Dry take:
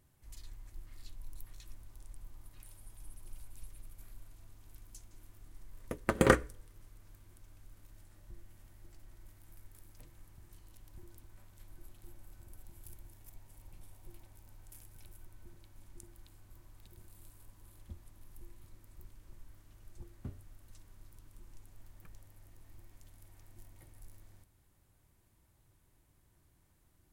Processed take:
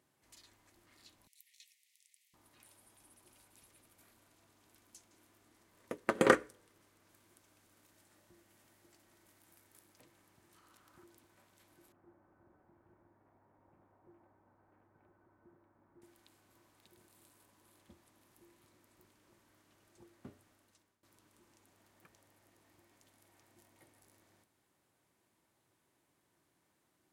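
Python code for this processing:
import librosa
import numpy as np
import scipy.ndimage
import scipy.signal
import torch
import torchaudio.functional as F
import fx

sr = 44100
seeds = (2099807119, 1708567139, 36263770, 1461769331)

y = fx.steep_highpass(x, sr, hz=1900.0, slope=96, at=(1.27, 2.34))
y = fx.high_shelf(y, sr, hz=5600.0, db=4.5, at=(7.09, 9.83))
y = fx.peak_eq(y, sr, hz=1300.0, db=13.5, octaves=0.48, at=(10.55, 11.04))
y = fx.lowpass(y, sr, hz=1500.0, slope=24, at=(11.92, 16.02))
y = fx.edit(y, sr, fx.fade_out_to(start_s=20.5, length_s=0.53, floor_db=-19.5), tone=tone)
y = scipy.signal.sosfilt(scipy.signal.butter(2, 250.0, 'highpass', fs=sr, output='sos'), y)
y = fx.high_shelf(y, sr, hz=11000.0, db=-11.5)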